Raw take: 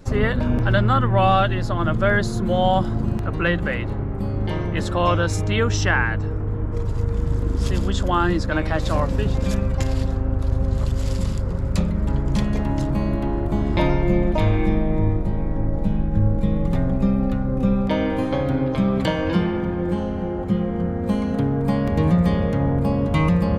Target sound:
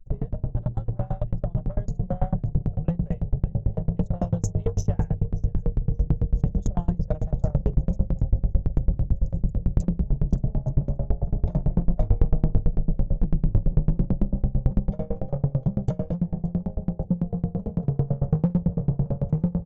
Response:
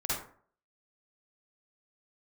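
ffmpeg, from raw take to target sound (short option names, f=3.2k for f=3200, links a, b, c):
-filter_complex "[0:a]atempo=1.2,anlmdn=100,firequalizer=gain_entry='entry(120,0);entry(170,7);entry(280,-24);entry(440,-2);entry(720,-1);entry(1100,-30);entry(1900,-25);entry(4300,-19);entry(6600,3);entry(9500,-28)':delay=0.05:min_phase=1,volume=10dB,asoftclip=hard,volume=-10dB,aecho=1:1:6.8:0.4,acrossover=split=150[a][b];[b]acompressor=threshold=-24dB:ratio=5[c];[a][c]amix=inputs=2:normalize=0,asplit=2[d][e];[e]aecho=0:1:577|1154|1731:0.1|0.034|0.0116[f];[d][f]amix=inputs=2:normalize=0,asoftclip=type=tanh:threshold=-17.5dB,dynaudnorm=f=120:g=31:m=5dB,lowshelf=f=62:g=9,aeval=exprs='val(0)*pow(10,-30*if(lt(mod(9*n/s,1),2*abs(9)/1000),1-mod(9*n/s,1)/(2*abs(9)/1000),(mod(9*n/s,1)-2*abs(9)/1000)/(1-2*abs(9)/1000))/20)':c=same"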